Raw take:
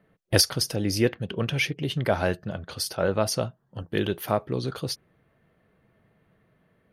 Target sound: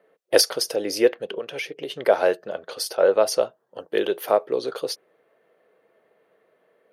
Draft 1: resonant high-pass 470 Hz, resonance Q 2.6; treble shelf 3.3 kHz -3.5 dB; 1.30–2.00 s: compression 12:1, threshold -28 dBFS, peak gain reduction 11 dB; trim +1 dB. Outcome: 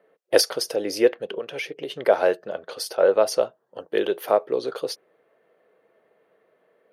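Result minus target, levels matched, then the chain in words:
8 kHz band -2.5 dB
resonant high-pass 470 Hz, resonance Q 2.6; 1.30–2.00 s: compression 12:1, threshold -28 dBFS, peak gain reduction 11 dB; trim +1 dB

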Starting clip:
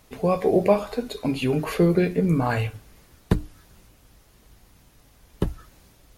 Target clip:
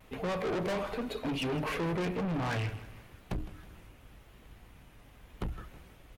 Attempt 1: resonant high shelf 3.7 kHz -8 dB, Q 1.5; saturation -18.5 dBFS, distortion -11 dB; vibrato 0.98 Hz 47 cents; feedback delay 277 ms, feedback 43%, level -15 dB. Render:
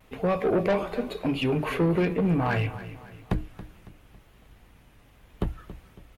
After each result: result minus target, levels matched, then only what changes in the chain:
echo 117 ms late; saturation: distortion -7 dB
change: feedback delay 160 ms, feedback 43%, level -15 dB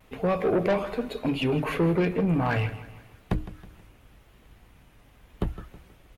saturation: distortion -7 dB
change: saturation -30.5 dBFS, distortion -3 dB

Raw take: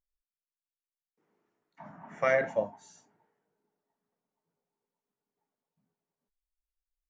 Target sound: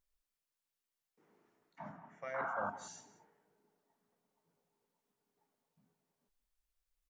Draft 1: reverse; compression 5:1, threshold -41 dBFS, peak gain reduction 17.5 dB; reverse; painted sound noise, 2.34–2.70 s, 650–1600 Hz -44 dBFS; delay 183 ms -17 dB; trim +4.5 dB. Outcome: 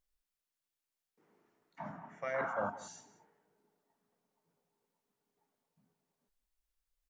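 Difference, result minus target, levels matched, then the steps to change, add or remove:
compression: peak gain reduction -5.5 dB
change: compression 5:1, threshold -48 dBFS, peak gain reduction 23.5 dB

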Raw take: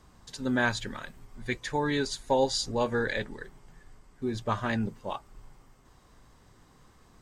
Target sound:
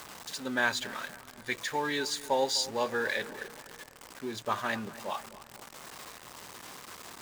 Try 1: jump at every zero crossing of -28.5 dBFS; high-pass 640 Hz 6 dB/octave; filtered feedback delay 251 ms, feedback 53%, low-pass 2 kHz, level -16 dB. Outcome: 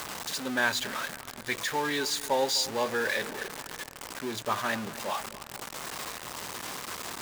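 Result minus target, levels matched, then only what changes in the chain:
jump at every zero crossing: distortion +7 dB
change: jump at every zero crossing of -37.5 dBFS

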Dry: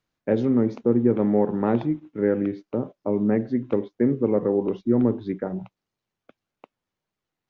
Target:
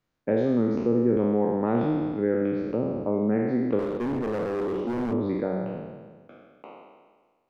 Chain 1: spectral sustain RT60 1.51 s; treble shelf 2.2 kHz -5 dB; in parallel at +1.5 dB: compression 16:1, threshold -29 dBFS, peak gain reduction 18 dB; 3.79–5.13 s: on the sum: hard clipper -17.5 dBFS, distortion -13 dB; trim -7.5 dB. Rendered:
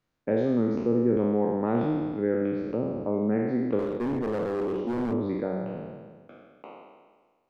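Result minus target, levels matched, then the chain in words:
compression: peak gain reduction +5.5 dB
spectral sustain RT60 1.51 s; treble shelf 2.2 kHz -5 dB; in parallel at +1.5 dB: compression 16:1, threshold -23 dBFS, peak gain reduction 12 dB; 3.79–5.13 s: on the sum: hard clipper -17.5 dBFS, distortion -11 dB; trim -7.5 dB

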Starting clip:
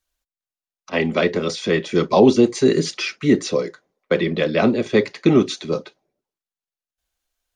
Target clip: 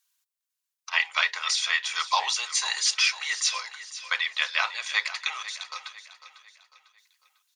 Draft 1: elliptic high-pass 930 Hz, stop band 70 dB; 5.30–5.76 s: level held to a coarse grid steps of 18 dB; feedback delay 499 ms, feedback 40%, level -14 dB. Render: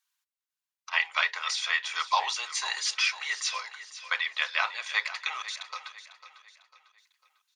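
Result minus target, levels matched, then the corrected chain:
8 kHz band -3.5 dB
elliptic high-pass 930 Hz, stop band 70 dB; treble shelf 4.1 kHz +9.5 dB; 5.30–5.76 s: level held to a coarse grid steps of 18 dB; feedback delay 499 ms, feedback 40%, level -14 dB

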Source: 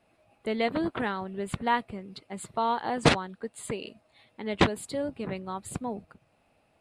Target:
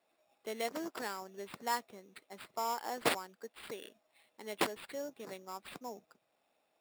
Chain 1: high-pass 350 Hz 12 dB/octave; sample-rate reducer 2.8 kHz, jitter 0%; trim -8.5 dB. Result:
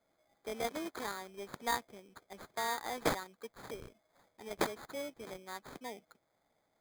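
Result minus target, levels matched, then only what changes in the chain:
sample-rate reducer: distortion +6 dB
change: sample-rate reducer 6.2 kHz, jitter 0%

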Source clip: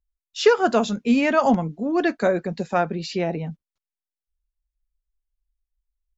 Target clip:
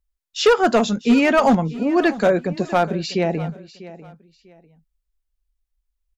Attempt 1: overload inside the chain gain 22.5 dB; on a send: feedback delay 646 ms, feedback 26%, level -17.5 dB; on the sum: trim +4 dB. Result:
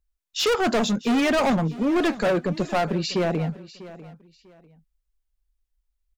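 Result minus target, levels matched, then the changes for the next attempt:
overload inside the chain: distortion +9 dB
change: overload inside the chain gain 13 dB

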